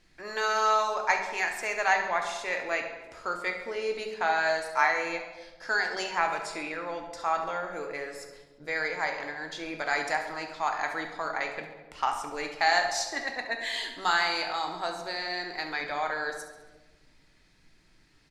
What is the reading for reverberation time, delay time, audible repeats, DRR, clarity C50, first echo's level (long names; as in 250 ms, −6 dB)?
1.2 s, 69 ms, 3, 3.5 dB, 6.0 dB, −11.0 dB